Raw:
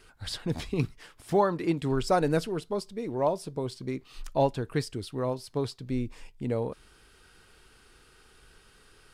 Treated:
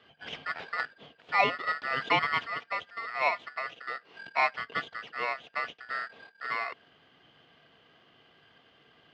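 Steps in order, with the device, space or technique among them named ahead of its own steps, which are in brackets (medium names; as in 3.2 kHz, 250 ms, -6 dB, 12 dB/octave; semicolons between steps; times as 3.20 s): ring modulator pedal into a guitar cabinet (polarity switched at an audio rate 1.6 kHz; cabinet simulation 100–3400 Hz, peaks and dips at 150 Hz +6 dB, 250 Hz +5 dB, 460 Hz +9 dB, 690 Hz +9 dB, 1.6 kHz -7 dB, 3 kHz +5 dB); trim -2 dB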